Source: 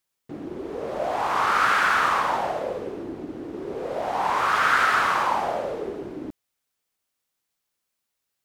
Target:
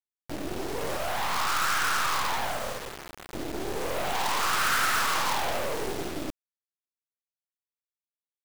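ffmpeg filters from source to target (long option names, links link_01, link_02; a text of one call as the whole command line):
ffmpeg -i in.wav -filter_complex "[0:a]asettb=1/sr,asplit=3[link_01][link_02][link_03];[link_01]atrim=end=0.974[link_04];[link_02]atrim=start=0.97:end=3.33,asetpts=PTS-STARTPTS,afade=type=in:duration=0.004:curve=qsin,afade=type=out:start_time=2.356:duration=0.004:curve=qsin,acrossover=split=570 2100:gain=0.0631 1 0.178[link_05][link_06][link_07];[link_05][link_06][link_07]amix=inputs=3:normalize=0[link_08];[link_03]atrim=start=3.326[link_09];[link_04][link_08]acrossfade=duration=0.004:curve1=hsin:curve2=qsin[link_10];[link_10][link_09]acrossfade=duration=0.004:curve1=qsin:curve2=hsin,acrusher=bits=4:dc=4:mix=0:aa=0.000001,asoftclip=type=hard:threshold=-27.5dB,adynamicequalizer=threshold=0.00708:dfrequency=1600:dqfactor=0.7:tfrequency=1600:tqfactor=0.7:attack=5:release=100:ratio=0.375:range=2:mode=boostabove:tftype=highshelf,volume=4.5dB" out.wav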